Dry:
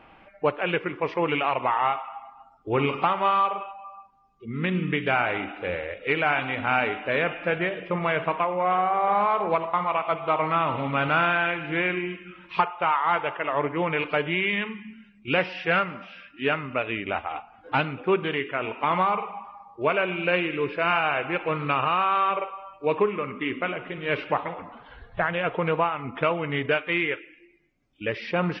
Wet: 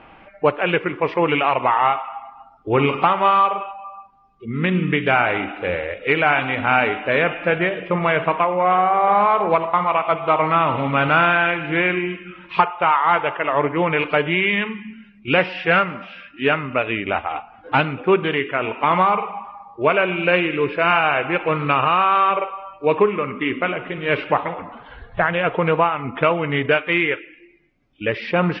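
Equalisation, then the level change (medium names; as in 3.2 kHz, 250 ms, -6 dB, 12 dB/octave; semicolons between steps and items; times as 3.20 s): low-pass 4.3 kHz 12 dB/octave; +6.5 dB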